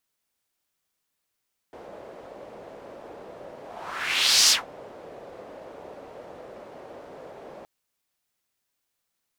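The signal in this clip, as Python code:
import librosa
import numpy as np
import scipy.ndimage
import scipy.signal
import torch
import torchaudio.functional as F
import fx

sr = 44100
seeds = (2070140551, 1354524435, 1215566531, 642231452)

y = fx.whoosh(sr, seeds[0], length_s=5.92, peak_s=2.77, rise_s=0.95, fall_s=0.16, ends_hz=550.0, peak_hz=5400.0, q=2.3, swell_db=26.0)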